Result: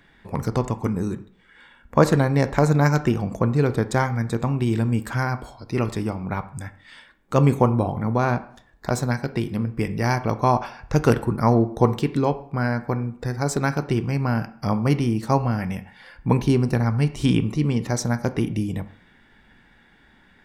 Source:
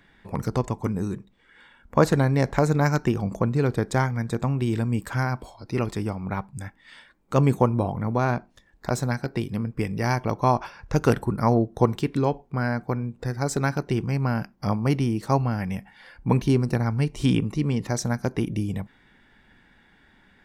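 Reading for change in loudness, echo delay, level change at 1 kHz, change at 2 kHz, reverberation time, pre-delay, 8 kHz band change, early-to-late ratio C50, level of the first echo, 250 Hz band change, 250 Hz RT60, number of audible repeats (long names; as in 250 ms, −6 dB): +2.5 dB, no echo audible, +2.5 dB, +2.5 dB, 0.55 s, 10 ms, +2.0 dB, 15.0 dB, no echo audible, +2.5 dB, 0.50 s, no echo audible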